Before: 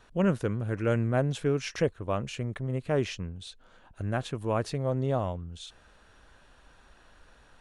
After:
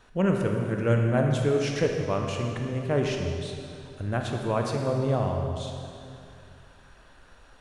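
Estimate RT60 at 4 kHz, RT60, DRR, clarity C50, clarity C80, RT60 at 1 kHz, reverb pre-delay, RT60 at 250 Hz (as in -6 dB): 2.2 s, 2.6 s, 1.5 dB, 2.5 dB, 3.5 dB, 2.6 s, 20 ms, 2.8 s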